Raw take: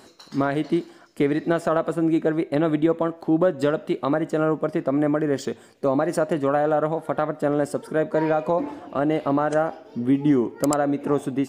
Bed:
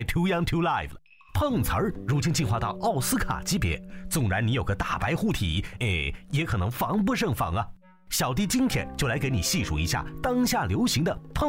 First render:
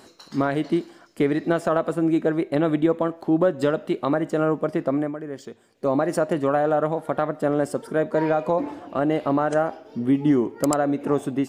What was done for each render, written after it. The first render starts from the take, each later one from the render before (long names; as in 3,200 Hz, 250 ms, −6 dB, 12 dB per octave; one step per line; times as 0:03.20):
0:04.92–0:05.91: duck −10.5 dB, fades 0.21 s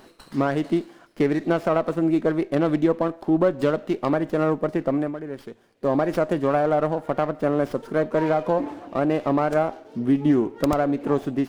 windowed peak hold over 5 samples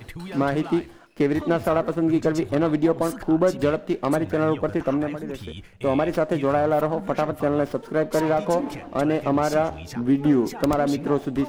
mix in bed −11.5 dB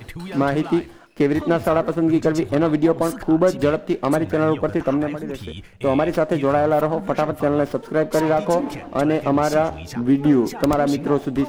level +3 dB